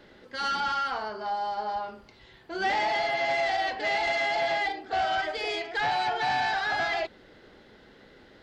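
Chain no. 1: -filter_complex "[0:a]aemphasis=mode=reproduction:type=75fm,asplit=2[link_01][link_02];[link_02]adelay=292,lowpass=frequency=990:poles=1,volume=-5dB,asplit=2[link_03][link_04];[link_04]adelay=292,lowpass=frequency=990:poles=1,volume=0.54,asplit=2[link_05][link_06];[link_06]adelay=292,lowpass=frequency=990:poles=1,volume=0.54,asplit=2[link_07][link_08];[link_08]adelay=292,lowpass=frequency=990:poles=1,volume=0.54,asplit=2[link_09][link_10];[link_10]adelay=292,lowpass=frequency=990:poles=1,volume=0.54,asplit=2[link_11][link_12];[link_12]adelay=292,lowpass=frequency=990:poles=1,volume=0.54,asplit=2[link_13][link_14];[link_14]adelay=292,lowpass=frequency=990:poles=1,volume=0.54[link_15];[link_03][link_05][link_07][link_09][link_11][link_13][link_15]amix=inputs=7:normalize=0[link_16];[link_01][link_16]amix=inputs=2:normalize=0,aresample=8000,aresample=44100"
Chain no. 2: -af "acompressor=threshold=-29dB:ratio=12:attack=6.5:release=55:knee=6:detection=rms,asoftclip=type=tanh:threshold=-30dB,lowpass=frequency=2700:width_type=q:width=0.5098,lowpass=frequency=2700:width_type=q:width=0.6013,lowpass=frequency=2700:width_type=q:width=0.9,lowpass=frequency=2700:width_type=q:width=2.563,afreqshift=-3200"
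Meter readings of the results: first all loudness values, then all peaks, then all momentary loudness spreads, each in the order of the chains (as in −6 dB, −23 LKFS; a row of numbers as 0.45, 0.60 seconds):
−28.0, −33.5 LKFS; −17.0, −26.5 dBFS; 13, 19 LU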